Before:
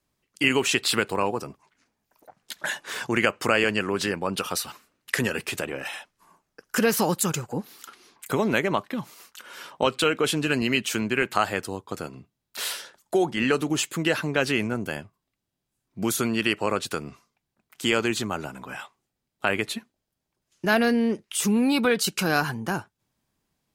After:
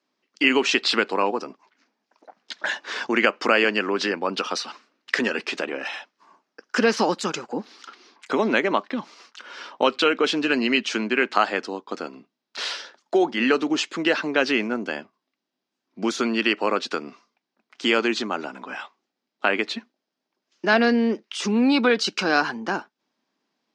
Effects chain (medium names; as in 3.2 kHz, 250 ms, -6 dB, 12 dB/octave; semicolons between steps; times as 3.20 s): elliptic band-pass 240–5400 Hz, stop band 60 dB; trim +3.5 dB